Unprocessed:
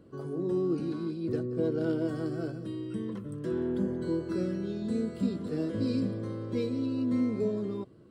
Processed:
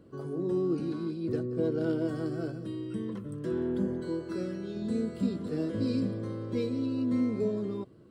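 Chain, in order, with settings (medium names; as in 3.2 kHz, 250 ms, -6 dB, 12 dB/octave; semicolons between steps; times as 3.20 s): 4.00–4.76 s: bass shelf 330 Hz -6 dB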